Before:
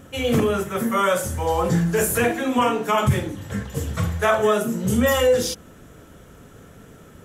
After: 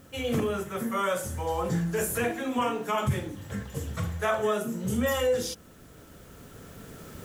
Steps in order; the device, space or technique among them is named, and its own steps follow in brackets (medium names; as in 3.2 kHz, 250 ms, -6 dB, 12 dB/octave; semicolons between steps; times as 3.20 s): cheap recorder with automatic gain (white noise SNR 34 dB; recorder AGC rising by 5.8 dB/s); trim -8 dB